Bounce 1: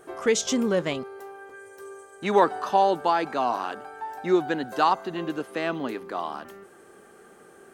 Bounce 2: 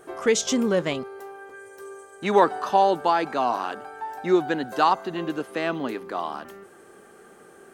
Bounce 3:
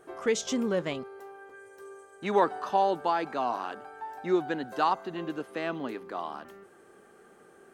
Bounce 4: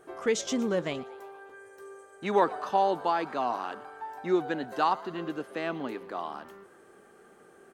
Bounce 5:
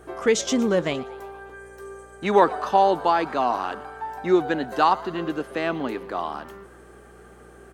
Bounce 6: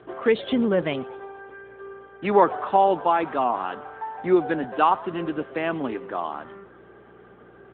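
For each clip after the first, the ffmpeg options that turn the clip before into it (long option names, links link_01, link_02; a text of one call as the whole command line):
ffmpeg -i in.wav -af "bandreject=frequency=49.22:width_type=h:width=4,bandreject=frequency=98.44:width_type=h:width=4,volume=1.5dB" out.wav
ffmpeg -i in.wav -af "highshelf=frequency=5300:gain=-4.5,volume=-6dB" out.wav
ffmpeg -i in.wav -filter_complex "[0:a]asplit=6[link_01][link_02][link_03][link_04][link_05][link_06];[link_02]adelay=117,afreqshift=110,volume=-21dB[link_07];[link_03]adelay=234,afreqshift=220,volume=-25.6dB[link_08];[link_04]adelay=351,afreqshift=330,volume=-30.2dB[link_09];[link_05]adelay=468,afreqshift=440,volume=-34.7dB[link_10];[link_06]adelay=585,afreqshift=550,volume=-39.3dB[link_11];[link_01][link_07][link_08][link_09][link_10][link_11]amix=inputs=6:normalize=0" out.wav
ffmpeg -i in.wav -af "aeval=exprs='val(0)+0.00112*(sin(2*PI*60*n/s)+sin(2*PI*2*60*n/s)/2+sin(2*PI*3*60*n/s)/3+sin(2*PI*4*60*n/s)/4+sin(2*PI*5*60*n/s)/5)':channel_layout=same,volume=7dB" out.wav
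ffmpeg -i in.wav -ar 8000 -c:a libopencore_amrnb -b:a 10200 out.amr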